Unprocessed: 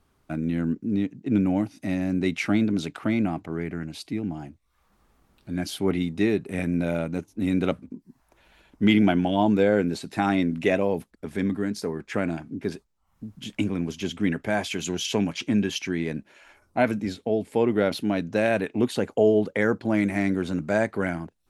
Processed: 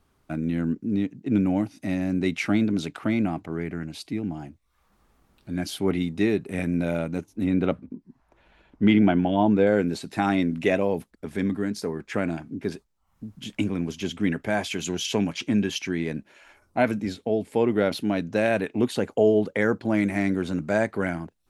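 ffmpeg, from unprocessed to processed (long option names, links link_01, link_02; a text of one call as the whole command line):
ffmpeg -i in.wav -filter_complex "[0:a]asettb=1/sr,asplit=3[link_01][link_02][link_03];[link_01]atrim=end=7.444[link_04];[link_02]atrim=start=7.44:end=9.67,asetpts=PTS-STARTPTS,afade=type=in:duration=0.004:curve=qsin,afade=type=out:start_time=2.226:duration=0.004:curve=qsin,aemphasis=mode=reproduction:type=75fm[link_05];[link_03]atrim=start=9.666[link_06];[link_04][link_05]acrossfade=duration=0.004:curve1=hsin:curve2=qsin[link_07];[link_07][link_06]acrossfade=duration=0.004:curve1=qsin:curve2=hsin" out.wav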